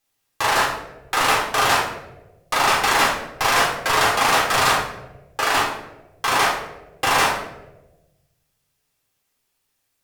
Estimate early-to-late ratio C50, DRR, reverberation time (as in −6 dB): 4.0 dB, −3.5 dB, 1.1 s